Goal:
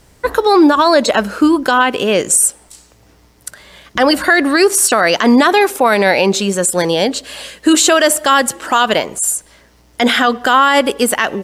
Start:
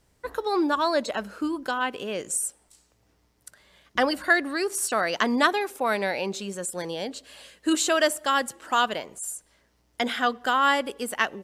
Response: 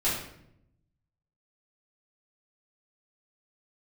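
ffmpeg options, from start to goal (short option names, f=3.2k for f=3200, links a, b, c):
-af "alimiter=level_in=18.5dB:limit=-1dB:release=50:level=0:latency=1,volume=-1dB"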